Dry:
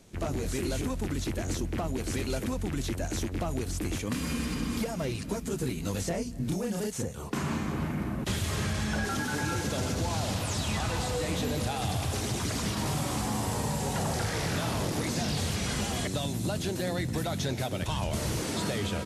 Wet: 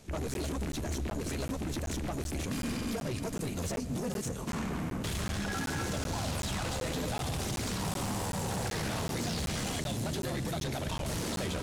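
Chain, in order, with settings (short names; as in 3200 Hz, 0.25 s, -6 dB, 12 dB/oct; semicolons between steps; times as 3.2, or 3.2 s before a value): soft clip -32 dBFS, distortion -10 dB; diffused feedback echo 0.496 s, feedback 71%, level -15 dB; granular stretch 0.61×, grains 27 ms; crackling interface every 0.38 s, samples 512, zero, from 0.34; gain +2.5 dB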